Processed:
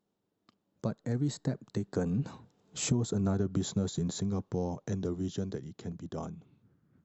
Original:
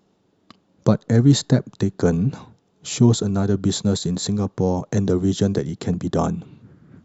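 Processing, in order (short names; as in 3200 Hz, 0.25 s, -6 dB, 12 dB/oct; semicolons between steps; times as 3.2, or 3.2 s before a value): Doppler pass-by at 3.16, 11 m/s, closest 4.1 m; dynamic EQ 3900 Hz, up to -6 dB, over -46 dBFS, Q 0.93; compressor 16:1, threshold -25 dBFS, peak gain reduction 15.5 dB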